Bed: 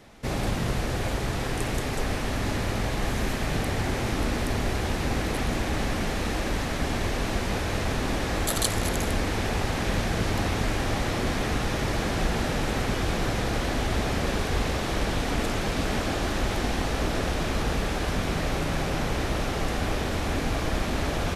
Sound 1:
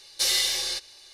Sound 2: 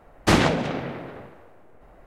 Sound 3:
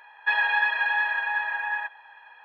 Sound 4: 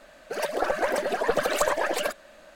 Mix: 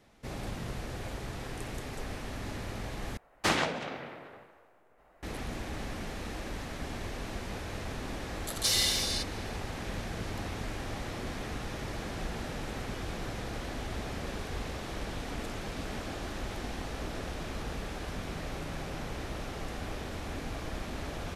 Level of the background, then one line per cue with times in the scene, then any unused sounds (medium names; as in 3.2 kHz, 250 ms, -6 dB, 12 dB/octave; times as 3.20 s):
bed -11 dB
3.17 s: replace with 2 -5.5 dB + bass shelf 440 Hz -11.5 dB
8.44 s: add 1 -4 dB
not used: 3, 4